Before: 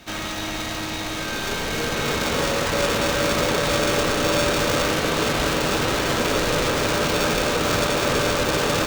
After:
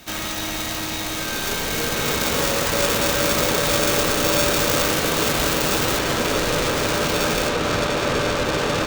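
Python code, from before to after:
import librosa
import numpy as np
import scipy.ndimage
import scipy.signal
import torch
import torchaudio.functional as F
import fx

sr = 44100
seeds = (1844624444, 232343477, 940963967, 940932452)

y = fx.high_shelf(x, sr, hz=7800.0, db=fx.steps((0.0, 12.0), (5.97, 4.0), (7.48, -8.0)))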